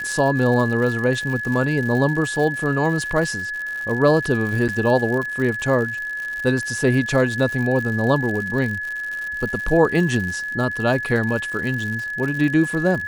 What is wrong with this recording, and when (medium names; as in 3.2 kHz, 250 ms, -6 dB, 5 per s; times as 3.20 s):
crackle 110 per s -27 dBFS
whine 1.7 kHz -25 dBFS
4.68–4.69 s: dropout 7.9 ms